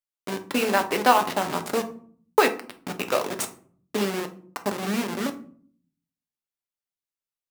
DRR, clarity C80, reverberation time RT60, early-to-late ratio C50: 5.5 dB, 18.5 dB, 0.55 s, 13.5 dB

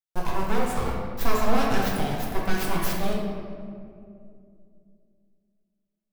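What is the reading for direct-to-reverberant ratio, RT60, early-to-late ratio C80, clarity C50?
−4.0 dB, 2.5 s, 2.5 dB, 0.5 dB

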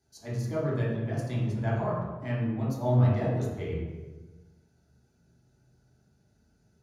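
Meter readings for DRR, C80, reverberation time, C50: −7.5 dB, 3.0 dB, 1.2 s, 0.0 dB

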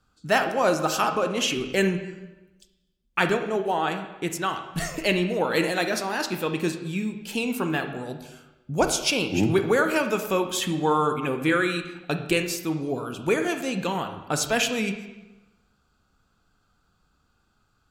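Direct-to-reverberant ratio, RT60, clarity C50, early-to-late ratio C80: 7.0 dB, 1.0 s, 8.5 dB, 10.5 dB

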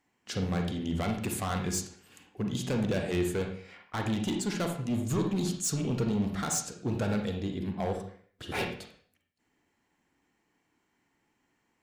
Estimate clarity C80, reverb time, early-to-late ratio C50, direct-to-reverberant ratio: 9.5 dB, 0.50 s, 5.5 dB, 3.0 dB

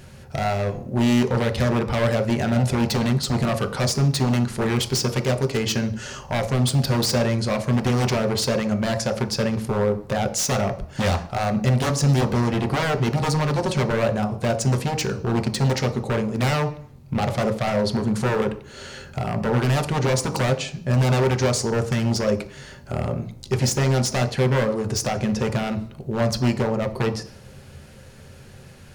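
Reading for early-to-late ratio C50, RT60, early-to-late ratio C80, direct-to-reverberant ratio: 12.5 dB, 0.50 s, 16.5 dB, 5.0 dB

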